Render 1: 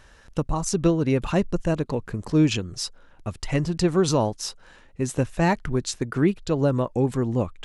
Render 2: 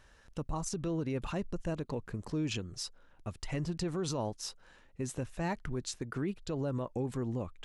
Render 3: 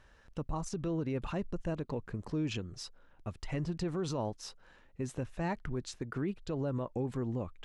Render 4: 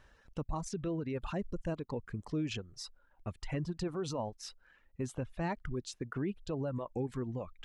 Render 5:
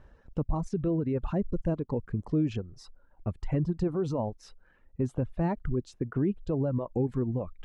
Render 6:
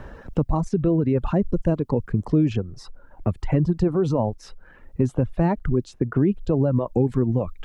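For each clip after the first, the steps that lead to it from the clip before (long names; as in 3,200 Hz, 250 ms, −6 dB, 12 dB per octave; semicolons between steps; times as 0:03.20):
brickwall limiter −17 dBFS, peak gain reduction 9 dB; level −9 dB
high-shelf EQ 5,600 Hz −10.5 dB
reverb reduction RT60 1.3 s
tilt shelving filter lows +9 dB, about 1,300 Hz
multiband upward and downward compressor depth 40%; level +8 dB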